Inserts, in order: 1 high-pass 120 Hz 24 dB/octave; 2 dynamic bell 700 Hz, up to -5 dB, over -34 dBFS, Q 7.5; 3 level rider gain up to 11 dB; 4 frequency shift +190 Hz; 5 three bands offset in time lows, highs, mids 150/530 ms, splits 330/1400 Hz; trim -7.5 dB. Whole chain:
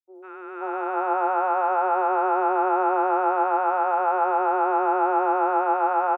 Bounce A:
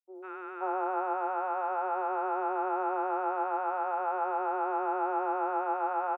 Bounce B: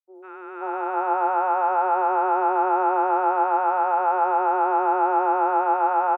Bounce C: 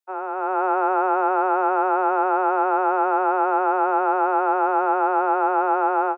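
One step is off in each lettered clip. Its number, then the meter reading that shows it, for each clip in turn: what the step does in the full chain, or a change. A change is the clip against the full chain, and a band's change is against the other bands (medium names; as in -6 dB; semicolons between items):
3, loudness change -9.0 LU; 2, 1 kHz band +2.0 dB; 5, echo-to-direct 17.0 dB to none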